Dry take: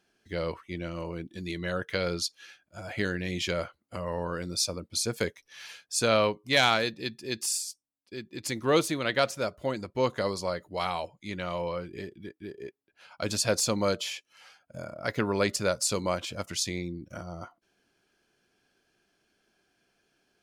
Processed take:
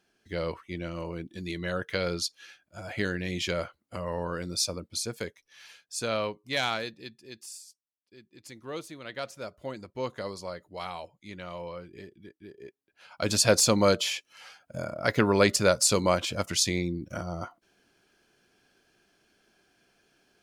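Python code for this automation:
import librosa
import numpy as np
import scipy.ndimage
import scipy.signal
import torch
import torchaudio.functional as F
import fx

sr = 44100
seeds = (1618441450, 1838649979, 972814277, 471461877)

y = fx.gain(x, sr, db=fx.line((4.78, 0.0), (5.23, -6.0), (6.8, -6.0), (7.45, -14.0), (8.9, -14.0), (9.61, -6.5), (12.53, -6.5), (13.41, 5.0)))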